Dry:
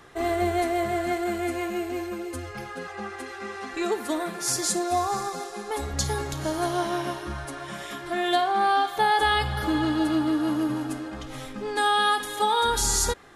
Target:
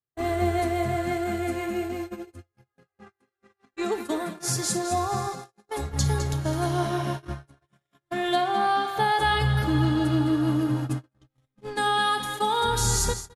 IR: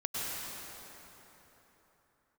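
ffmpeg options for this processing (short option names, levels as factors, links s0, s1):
-filter_complex "[0:a]asplit=2[s0][s1];[s1]aecho=0:1:209:0.335[s2];[s0][s2]amix=inputs=2:normalize=0,agate=range=0.00398:threshold=0.0316:ratio=16:detection=peak,equalizer=f=120:t=o:w=0.95:g=14.5,volume=0.794"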